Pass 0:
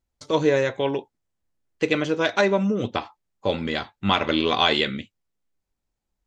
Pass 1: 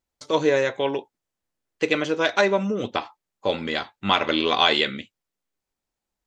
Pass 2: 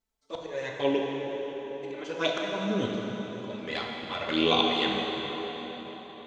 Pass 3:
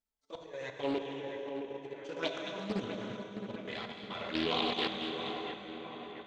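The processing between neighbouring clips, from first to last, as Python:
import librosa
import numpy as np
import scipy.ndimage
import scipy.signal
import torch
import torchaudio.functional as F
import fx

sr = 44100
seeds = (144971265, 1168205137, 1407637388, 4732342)

y1 = fx.low_shelf(x, sr, hz=180.0, db=-11.5)
y1 = y1 * 10.0 ** (1.5 / 20.0)
y2 = fx.auto_swell(y1, sr, attack_ms=470.0)
y2 = fx.env_flanger(y2, sr, rest_ms=4.5, full_db=-21.0)
y2 = fx.rev_plate(y2, sr, seeds[0], rt60_s=4.9, hf_ratio=0.75, predelay_ms=0, drr_db=-1.0)
y3 = fx.level_steps(y2, sr, step_db=9)
y3 = fx.echo_split(y3, sr, split_hz=2400.0, low_ms=667, high_ms=220, feedback_pct=52, wet_db=-8.5)
y3 = fx.doppler_dist(y3, sr, depth_ms=0.36)
y3 = y3 * 10.0 ** (-4.5 / 20.0)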